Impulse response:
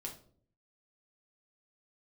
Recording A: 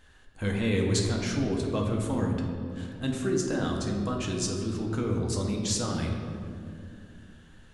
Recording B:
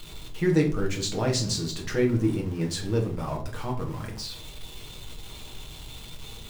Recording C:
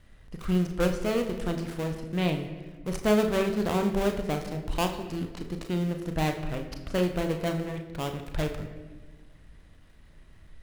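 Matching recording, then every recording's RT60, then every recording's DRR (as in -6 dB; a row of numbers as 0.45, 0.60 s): B; 2.4, 0.55, 1.4 s; -0.5, -0.5, 4.5 dB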